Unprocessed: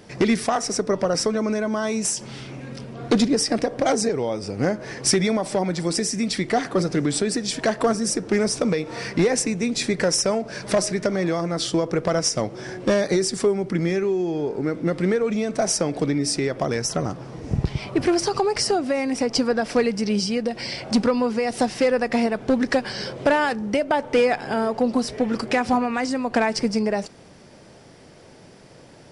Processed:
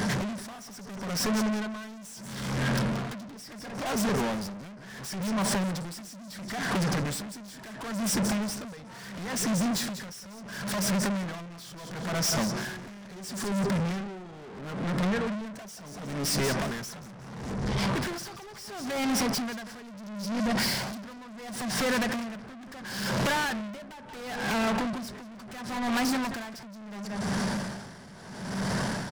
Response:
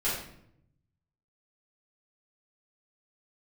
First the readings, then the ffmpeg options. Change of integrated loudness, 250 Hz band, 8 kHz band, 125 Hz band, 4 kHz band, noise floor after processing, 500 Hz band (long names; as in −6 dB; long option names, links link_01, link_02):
−8.0 dB, −7.5 dB, −7.5 dB, −3.5 dB, −6.0 dB, −45 dBFS, −14.0 dB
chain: -af "equalizer=frequency=200:width_type=o:width=0.33:gain=12,equalizer=frequency=315:width_type=o:width=0.33:gain=-11,equalizer=frequency=500:width_type=o:width=0.33:gain=-8,equalizer=frequency=1000:width_type=o:width=0.33:gain=6,equalizer=frequency=1600:width_type=o:width=0.33:gain=8,equalizer=frequency=2500:width_type=o:width=0.33:gain=-9,acompressor=threshold=-30dB:ratio=16,aeval=exprs='0.133*sin(PI/2*3.98*val(0)/0.133)':channel_layout=same,aecho=1:1:180|360|540:0.316|0.0949|0.0285,asoftclip=type=tanh:threshold=-31.5dB,aeval=exprs='val(0)*pow(10,-19*(0.5-0.5*cos(2*PI*0.73*n/s))/20)':channel_layout=same,volume=6.5dB"